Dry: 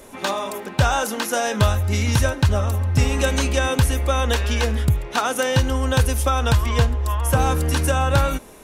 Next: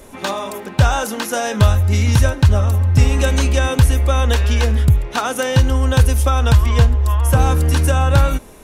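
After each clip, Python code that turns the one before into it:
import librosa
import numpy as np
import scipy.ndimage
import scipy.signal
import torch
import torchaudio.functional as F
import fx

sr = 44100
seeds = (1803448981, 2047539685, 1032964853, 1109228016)

y = fx.low_shelf(x, sr, hz=140.0, db=7.5)
y = F.gain(torch.from_numpy(y), 1.0).numpy()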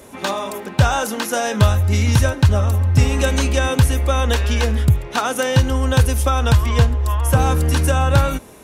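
y = scipy.signal.sosfilt(scipy.signal.butter(2, 72.0, 'highpass', fs=sr, output='sos'), x)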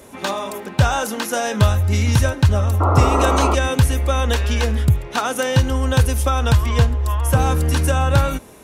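y = fx.spec_paint(x, sr, seeds[0], shape='noise', start_s=2.8, length_s=0.75, low_hz=260.0, high_hz=1400.0, level_db=-18.0)
y = F.gain(torch.from_numpy(y), -1.0).numpy()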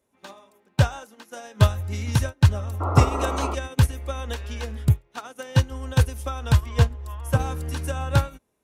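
y = fx.upward_expand(x, sr, threshold_db=-29.0, expansion=2.5)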